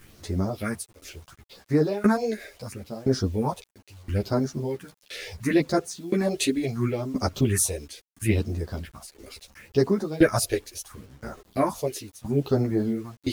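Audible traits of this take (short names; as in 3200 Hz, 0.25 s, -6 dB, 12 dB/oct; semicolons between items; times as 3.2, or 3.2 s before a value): tremolo saw down 0.98 Hz, depth 95%; phasing stages 4, 0.73 Hz, lowest notch 160–3000 Hz; a quantiser's noise floor 10-bit, dither none; a shimmering, thickened sound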